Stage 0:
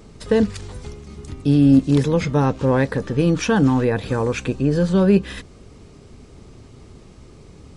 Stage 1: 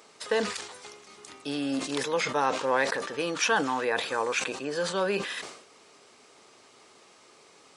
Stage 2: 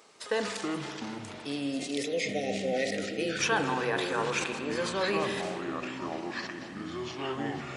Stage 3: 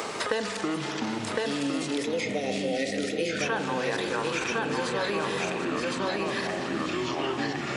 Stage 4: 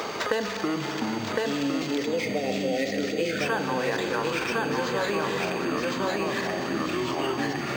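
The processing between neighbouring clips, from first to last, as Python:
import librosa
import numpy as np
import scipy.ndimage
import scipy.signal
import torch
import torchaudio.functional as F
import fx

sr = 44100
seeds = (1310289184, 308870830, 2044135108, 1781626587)

y1 = scipy.signal.sosfilt(scipy.signal.butter(2, 740.0, 'highpass', fs=sr, output='sos'), x)
y1 = fx.sustainer(y1, sr, db_per_s=79.0)
y2 = fx.spec_erase(y1, sr, start_s=1.1, length_s=2.28, low_hz=780.0, high_hz=1800.0)
y2 = fx.echo_pitch(y2, sr, ms=193, semitones=-6, count=2, db_per_echo=-6.0)
y2 = fx.rev_spring(y2, sr, rt60_s=3.3, pass_ms=(35, 60), chirp_ms=25, drr_db=7.0)
y2 = y2 * 10.0 ** (-3.0 / 20.0)
y3 = y2 + 10.0 ** (-3.0 / 20.0) * np.pad(y2, (int(1059 * sr / 1000.0), 0))[:len(y2)]
y3 = fx.band_squash(y3, sr, depth_pct=100)
y4 = y3 + 10.0 ** (-43.0 / 20.0) * np.sin(2.0 * np.pi * 6400.0 * np.arange(len(y3)) / sr)
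y4 = np.interp(np.arange(len(y4)), np.arange(len(y4))[::4], y4[::4])
y4 = y4 * 10.0 ** (2.0 / 20.0)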